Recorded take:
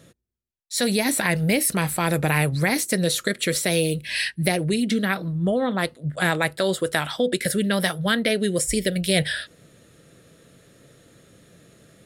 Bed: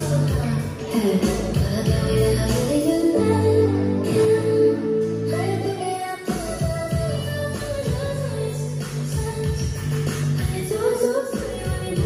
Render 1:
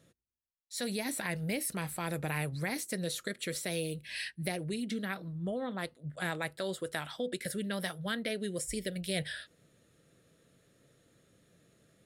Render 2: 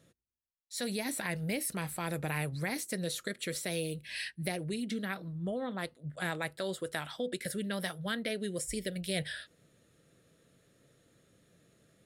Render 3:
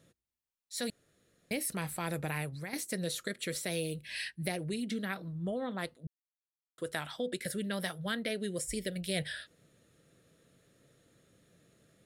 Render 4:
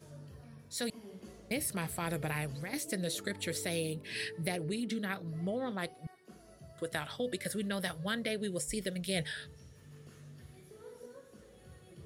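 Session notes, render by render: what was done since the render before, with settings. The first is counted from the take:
trim -13.5 dB
no audible change
0.90–1.51 s: room tone; 2.03–2.73 s: fade out equal-power, to -9.5 dB; 6.07–6.78 s: mute
add bed -30.5 dB

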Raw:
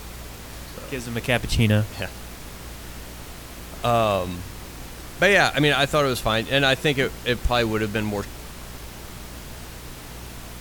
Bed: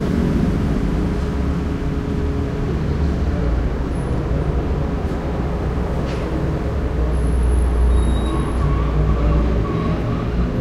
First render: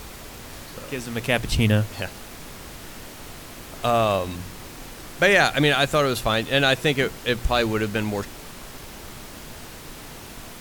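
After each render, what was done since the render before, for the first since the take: de-hum 60 Hz, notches 3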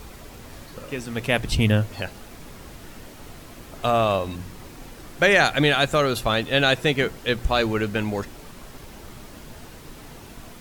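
noise reduction 6 dB, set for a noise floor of -40 dBFS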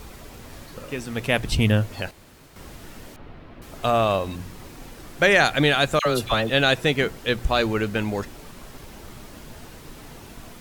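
2.11–2.56 s: room tone; 3.16–3.62 s: distance through air 360 m; 5.99–6.50 s: phase dispersion lows, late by 69 ms, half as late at 1.2 kHz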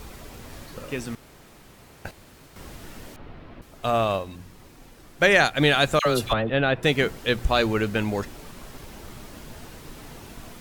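1.15–2.05 s: room tone; 3.61–5.62 s: upward expansion, over -30 dBFS; 6.33–6.83 s: distance through air 470 m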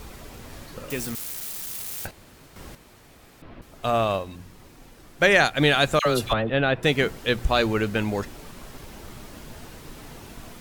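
0.90–2.07 s: zero-crossing glitches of -26 dBFS; 2.75–3.42 s: room tone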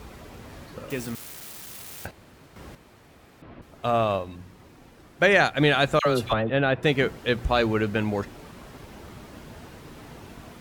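high-pass 49 Hz; treble shelf 4 kHz -8.5 dB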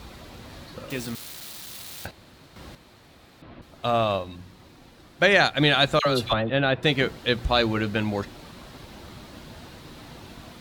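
peaking EQ 4 kHz +8 dB 0.65 oct; band-stop 430 Hz, Q 12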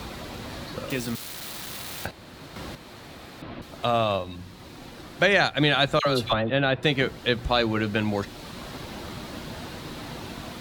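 three bands compressed up and down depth 40%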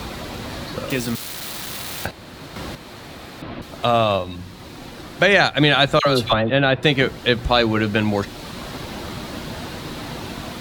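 trim +6 dB; peak limiter -1 dBFS, peak gain reduction 2 dB

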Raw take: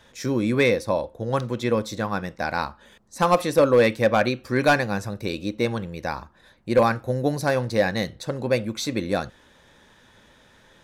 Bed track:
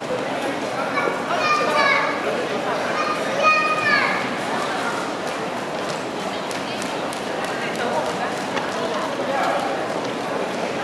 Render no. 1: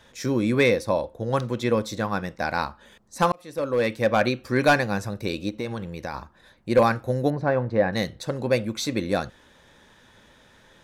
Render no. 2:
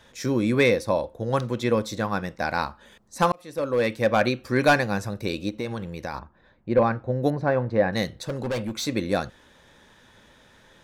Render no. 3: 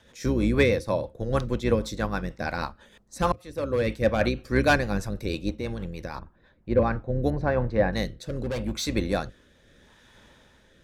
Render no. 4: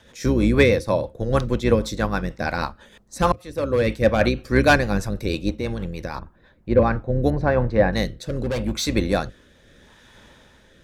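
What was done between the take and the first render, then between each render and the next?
3.32–4.27 s: fade in; 5.49–6.14 s: compression 2.5:1, threshold -28 dBFS; 7.30–7.93 s: low-pass 1.6 kHz
6.19–7.23 s: tape spacing loss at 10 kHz 30 dB; 8.22–8.86 s: hard clipper -24 dBFS
octave divider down 2 oct, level -3 dB; rotary cabinet horn 6.3 Hz, later 0.8 Hz, at 6.34 s
trim +5 dB

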